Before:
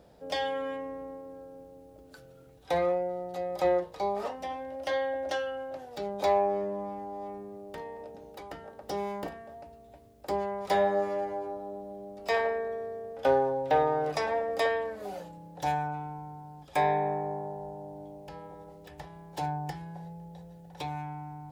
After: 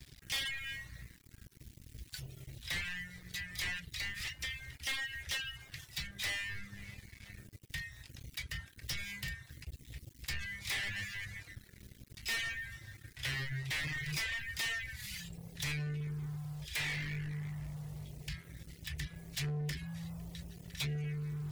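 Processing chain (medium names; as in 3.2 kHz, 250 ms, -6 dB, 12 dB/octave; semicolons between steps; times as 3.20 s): saturation -30 dBFS, distortion -7 dB; Chebyshev band-stop 140–1900 Hz, order 4; waveshaping leveller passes 5; reverb removal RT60 0.63 s; trim -3.5 dB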